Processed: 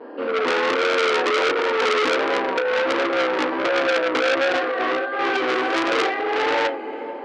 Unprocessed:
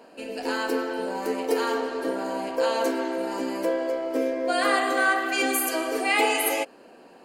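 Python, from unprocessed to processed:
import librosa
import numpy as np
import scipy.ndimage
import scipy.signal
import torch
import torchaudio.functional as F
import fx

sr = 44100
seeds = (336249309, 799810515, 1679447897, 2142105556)

y = fx.rev_schroeder(x, sr, rt60_s=0.39, comb_ms=28, drr_db=1.0)
y = fx.vibrato(y, sr, rate_hz=1.4, depth_cents=68.0)
y = fx.cabinet(y, sr, low_hz=310.0, low_slope=24, high_hz=3400.0, hz=(660.0, 1700.0, 2600.0), db=(-9, 3, -7))
y = fx.over_compress(y, sr, threshold_db=-27.0, ratio=-1.0)
y = fx.tilt_shelf(y, sr, db=8.5, hz=1100.0)
y = fx.echo_diffused(y, sr, ms=468, feedback_pct=41, wet_db=-15.5)
y = fx.transformer_sat(y, sr, knee_hz=2900.0)
y = y * librosa.db_to_amplitude(7.5)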